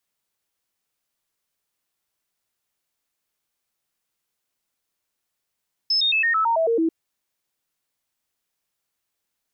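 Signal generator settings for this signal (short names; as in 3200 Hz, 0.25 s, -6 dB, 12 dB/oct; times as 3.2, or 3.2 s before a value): stepped sine 5220 Hz down, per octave 2, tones 9, 0.11 s, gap 0.00 s -17 dBFS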